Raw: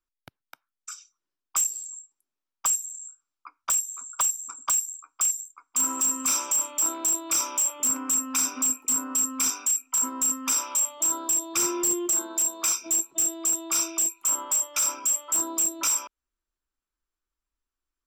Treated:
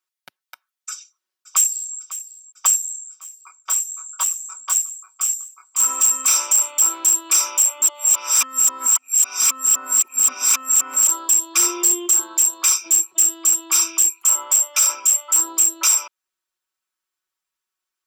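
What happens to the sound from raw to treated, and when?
0.90–1.96 s: echo throw 550 ms, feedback 80%, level -14.5 dB
2.98–5.79 s: detune thickener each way 14 cents -> 31 cents
7.82–11.08 s: reverse
whole clip: high-pass 1.2 kHz 6 dB/octave; comb 5.4 ms, depth 71%; trim +6.5 dB

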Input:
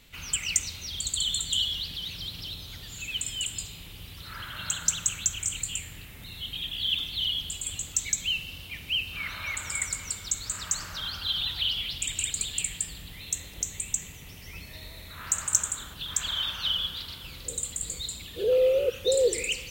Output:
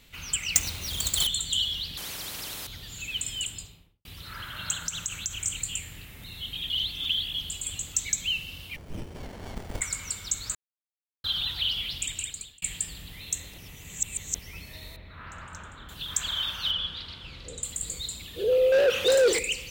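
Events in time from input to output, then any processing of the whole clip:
0.55–1.27 s: square wave that keeps the level
1.97–2.67 s: spectrum-flattening compressor 4:1
3.38–4.05 s: studio fade out
4.78–5.35 s: compression, threshold -26 dBFS
6.70–7.34 s: reverse
8.76–9.81 s: sliding maximum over 33 samples
10.55–11.24 s: mute
11.99–12.62 s: fade out
13.58–14.39 s: reverse
14.96–15.89 s: distance through air 380 m
16.71–17.63 s: low-pass 4.4 kHz
18.72–19.39 s: overdrive pedal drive 23 dB, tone 3.4 kHz, clips at -14 dBFS

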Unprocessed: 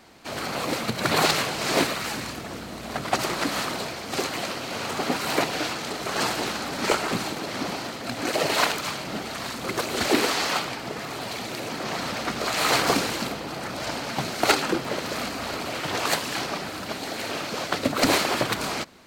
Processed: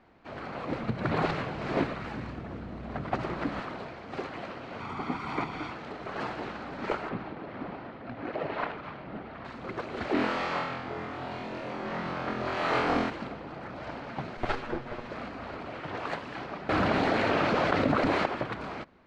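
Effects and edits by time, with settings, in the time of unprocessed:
0.69–3.60 s: bass shelf 290 Hz +7.5 dB
4.80–5.71 s: comb 0.9 ms, depth 60%
7.09–9.45 s: distance through air 230 m
10.13–13.10 s: flutter echo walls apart 4 m, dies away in 0.71 s
14.37–15.10 s: comb filter that takes the minimum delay 8.3 ms
16.69–18.26 s: level flattener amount 100%
whole clip: low-pass 2 kHz 12 dB/octave; bass shelf 64 Hz +8 dB; trim -7.5 dB

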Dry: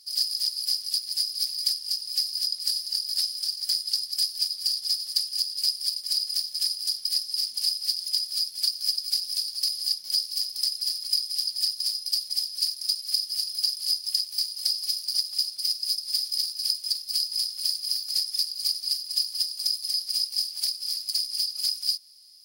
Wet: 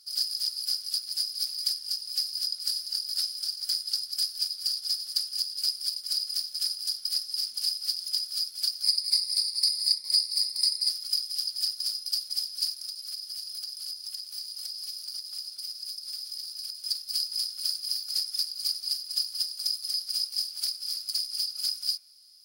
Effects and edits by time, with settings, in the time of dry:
8.83–10.90 s: rippled EQ curve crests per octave 0.93, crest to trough 14 dB
12.72–16.85 s: compression, threshold -30 dBFS
whole clip: peaking EQ 1.4 kHz +9 dB 0.3 oct; de-hum 84.21 Hz, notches 33; trim -3 dB

